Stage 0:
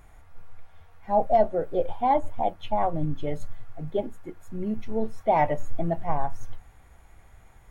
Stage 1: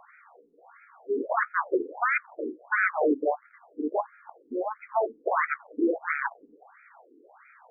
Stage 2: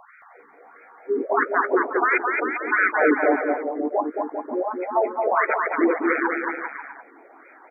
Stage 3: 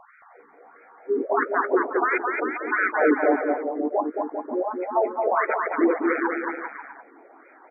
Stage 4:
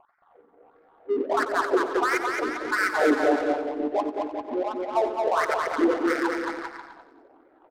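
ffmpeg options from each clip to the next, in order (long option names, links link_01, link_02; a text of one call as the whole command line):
ffmpeg -i in.wav -af "equalizer=frequency=130:width=0.97:gain=11.5,aeval=exprs='0.398*sin(PI/2*5.62*val(0)/0.398)':channel_layout=same,afftfilt=real='re*between(b*sr/1024,320*pow(1800/320,0.5+0.5*sin(2*PI*1.5*pts/sr))/1.41,320*pow(1800/320,0.5+0.5*sin(2*PI*1.5*pts/sr))*1.41)':imag='im*between(b*sr/1024,320*pow(1800/320,0.5+0.5*sin(2*PI*1.5*pts/sr))/1.41,320*pow(1800/320,0.5+0.5*sin(2*PI*1.5*pts/sr))*1.41)':win_size=1024:overlap=0.75,volume=-7.5dB" out.wav
ffmpeg -i in.wav -af "aecho=1:1:220|396|536.8|649.4|739.6:0.631|0.398|0.251|0.158|0.1,volume=4.5dB" out.wav
ffmpeg -i in.wav -af "highshelf=frequency=2200:gain=-10" out.wav
ffmpeg -i in.wav -filter_complex "[0:a]adynamicsmooth=sensitivity=4:basefreq=550,asplit=2[link_01][link_02];[link_02]aecho=0:1:91|182|273|364|455|546:0.251|0.146|0.0845|0.049|0.0284|0.0165[link_03];[link_01][link_03]amix=inputs=2:normalize=0,volume=-1.5dB" out.wav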